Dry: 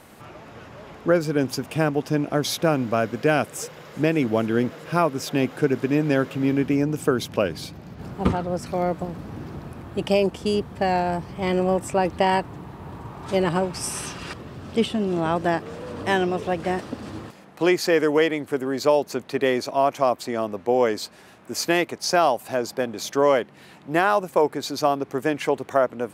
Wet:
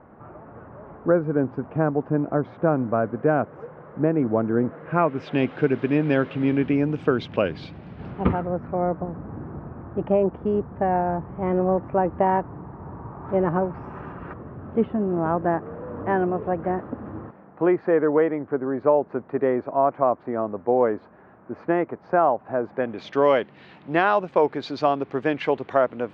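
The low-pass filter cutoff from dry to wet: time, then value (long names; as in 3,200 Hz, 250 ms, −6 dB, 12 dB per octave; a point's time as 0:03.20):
low-pass filter 24 dB per octave
0:04.63 1,400 Hz
0:05.37 3,400 Hz
0:08.08 3,400 Hz
0:08.65 1,500 Hz
0:22.59 1,500 Hz
0:23.18 3,800 Hz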